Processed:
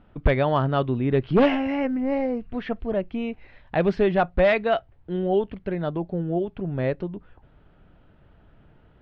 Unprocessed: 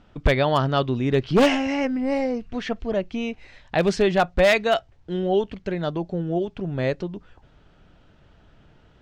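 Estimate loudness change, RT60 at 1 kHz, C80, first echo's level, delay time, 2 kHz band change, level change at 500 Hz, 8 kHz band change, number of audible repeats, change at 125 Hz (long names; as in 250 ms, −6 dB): −1.5 dB, no reverb audible, no reverb audible, no echo audible, no echo audible, −4.0 dB, −1.0 dB, below −20 dB, no echo audible, 0.0 dB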